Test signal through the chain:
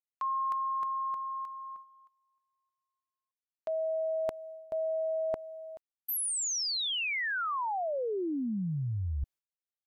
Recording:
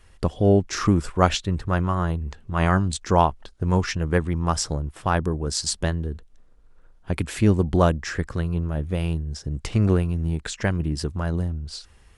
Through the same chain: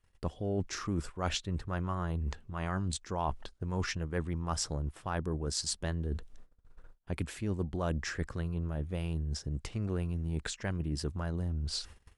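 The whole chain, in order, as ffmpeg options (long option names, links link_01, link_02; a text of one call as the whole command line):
ffmpeg -i in.wav -af "agate=range=-22dB:threshold=-49dB:ratio=16:detection=peak,areverse,acompressor=threshold=-33dB:ratio=6,areverse,volume=1.5dB" out.wav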